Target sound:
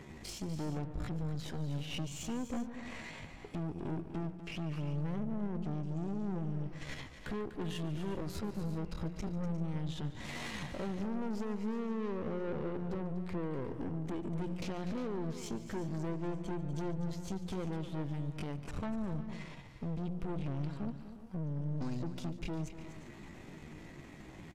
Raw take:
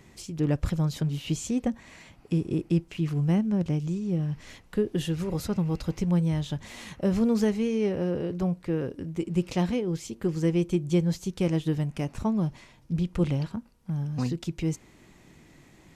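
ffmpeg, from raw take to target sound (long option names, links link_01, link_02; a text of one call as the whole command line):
ffmpeg -i in.wav -af "bandreject=frequency=60:width_type=h:width=6,bandreject=frequency=120:width_type=h:width=6,bandreject=frequency=180:width_type=h:width=6,atempo=0.65,acompressor=threshold=-39dB:ratio=3,highshelf=frequency=4500:gain=-10.5,aeval=exprs='(tanh(141*val(0)+0.6)-tanh(0.6))/141':channel_layout=same,aecho=1:1:144|246|355|391:0.133|0.266|0.178|0.112,volume=7.5dB" out.wav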